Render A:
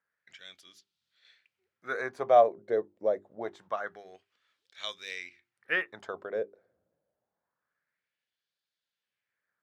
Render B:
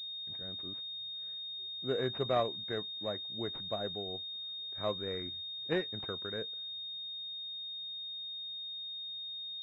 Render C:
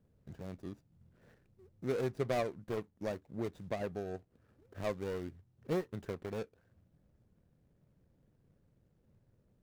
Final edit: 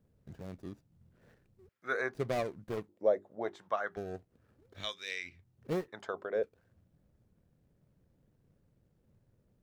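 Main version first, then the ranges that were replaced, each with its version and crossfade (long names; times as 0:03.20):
C
0:01.69–0:02.14: punch in from A
0:02.89–0:03.97: punch in from A
0:04.80–0:05.34: punch in from A, crossfade 0.24 s
0:05.88–0:06.43: punch in from A
not used: B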